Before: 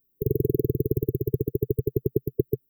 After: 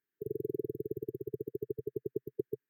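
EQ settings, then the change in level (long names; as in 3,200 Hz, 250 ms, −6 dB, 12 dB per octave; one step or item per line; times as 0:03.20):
resonant band-pass 1,700 Hz, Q 5.6
+16.5 dB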